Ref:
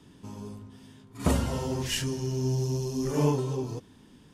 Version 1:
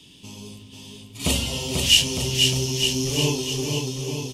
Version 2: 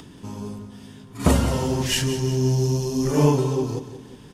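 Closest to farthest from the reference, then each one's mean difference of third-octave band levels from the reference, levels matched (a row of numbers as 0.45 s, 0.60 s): 2, 1; 1.5 dB, 8.5 dB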